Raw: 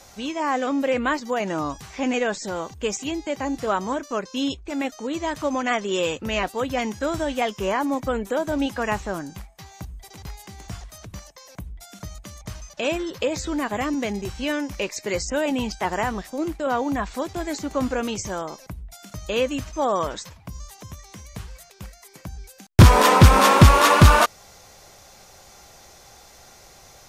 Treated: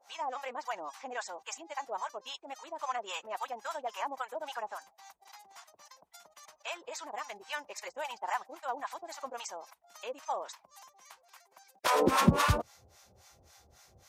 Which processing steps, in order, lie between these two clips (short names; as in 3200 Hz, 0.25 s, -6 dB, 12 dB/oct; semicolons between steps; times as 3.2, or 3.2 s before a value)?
harmonic tremolo 1.9 Hz, depth 100%, crossover 690 Hz; high-pass sweep 850 Hz -> 79 Hz, 22.54–24.2; time stretch by phase-locked vocoder 0.52×; gain -6.5 dB